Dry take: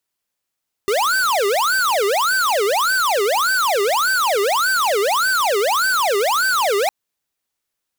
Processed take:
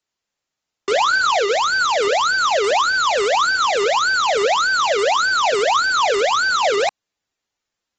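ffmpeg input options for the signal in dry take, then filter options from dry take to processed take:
-f lavfi -i "aevalsrc='0.133*(2*lt(mod((972*t-578/(2*PI*1.7)*sin(2*PI*1.7*t)),1),0.5)-1)':d=6.01:s=44100"
-filter_complex "[0:a]acrossover=split=210[s0][s1];[s0]aeval=exprs='(mod(94.4*val(0)+1,2)-1)/94.4':c=same[s2];[s2][s1]amix=inputs=2:normalize=0" -ar 48000 -c:a aac -b:a 24k

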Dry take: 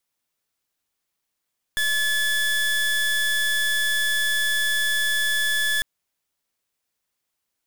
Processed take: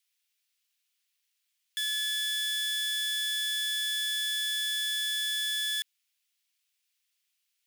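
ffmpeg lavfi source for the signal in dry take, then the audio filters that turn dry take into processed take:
-f lavfi -i "aevalsrc='0.0794*(2*lt(mod(1720*t,1),0.29)-1)':d=4.05:s=44100"
-filter_complex "[0:a]asplit=2[s0][s1];[s1]acrusher=samples=11:mix=1:aa=0.000001,volume=0.355[s2];[s0][s2]amix=inputs=2:normalize=0,asoftclip=type=hard:threshold=0.0316,highpass=f=2800:t=q:w=1.7"

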